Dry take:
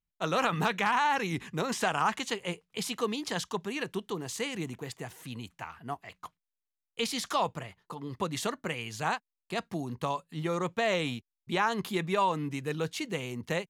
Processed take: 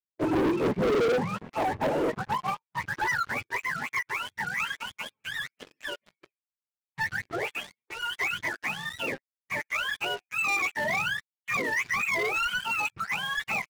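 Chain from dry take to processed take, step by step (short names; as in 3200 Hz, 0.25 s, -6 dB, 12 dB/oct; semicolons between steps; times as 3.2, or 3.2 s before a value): spectrum mirrored in octaves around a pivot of 640 Hz; band-pass sweep 360 Hz -> 2100 Hz, 0.48–3.71; sample leveller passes 5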